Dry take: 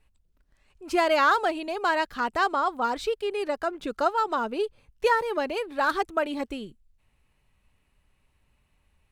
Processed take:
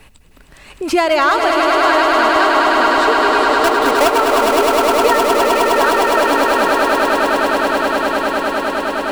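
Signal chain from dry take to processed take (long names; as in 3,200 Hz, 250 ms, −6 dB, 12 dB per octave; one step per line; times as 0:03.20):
0:03.64–0:04.18: each half-wave held at its own peak
echo that builds up and dies away 103 ms, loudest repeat 8, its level −5.5 dB
multiband upward and downward compressor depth 70%
level +6 dB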